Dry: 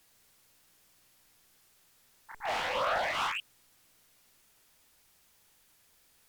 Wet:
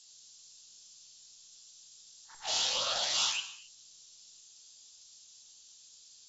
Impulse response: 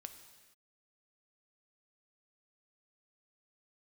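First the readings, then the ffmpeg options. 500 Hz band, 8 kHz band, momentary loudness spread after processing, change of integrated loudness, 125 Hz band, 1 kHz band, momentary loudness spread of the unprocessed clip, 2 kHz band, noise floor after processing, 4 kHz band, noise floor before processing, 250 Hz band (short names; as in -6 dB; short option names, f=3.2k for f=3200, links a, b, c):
-8.5 dB, +16.5 dB, 15 LU, +2.0 dB, n/a, -8.5 dB, 8 LU, -6.0 dB, -58 dBFS, +9.5 dB, -66 dBFS, -7.5 dB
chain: -filter_complex "[0:a]aexciter=amount=15.1:drive=5.9:freq=3.2k[a];[1:a]atrim=start_sample=2205,asetrate=74970,aresample=44100[b];[a][b]afir=irnorm=-1:irlink=0" -ar 22050 -c:a aac -b:a 24k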